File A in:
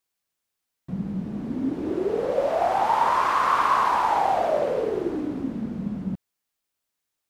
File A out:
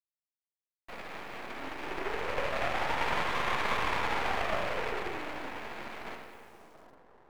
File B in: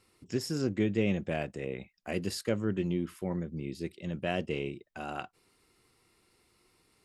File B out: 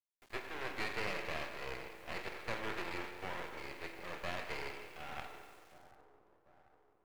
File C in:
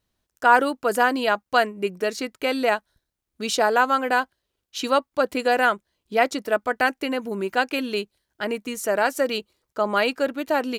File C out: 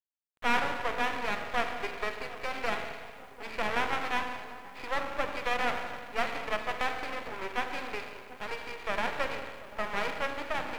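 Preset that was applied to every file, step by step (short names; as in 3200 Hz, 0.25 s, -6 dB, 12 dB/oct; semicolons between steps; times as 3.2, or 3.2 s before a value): spectral whitening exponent 0.3; steep low-pass 2600 Hz 96 dB/oct; notch 1500 Hz, Q 18; in parallel at +0.5 dB: compressor, threshold -30 dBFS; on the sum: HPF 370 Hz 24 dB/oct; spring tank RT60 1.7 s, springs 36/45 ms, chirp 55 ms, DRR 4 dB; bit-crush 9-bit; on a send: split-band echo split 1100 Hz, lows 0.741 s, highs 87 ms, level -15.5 dB; on the sum: half-wave rectifier; gain -7 dB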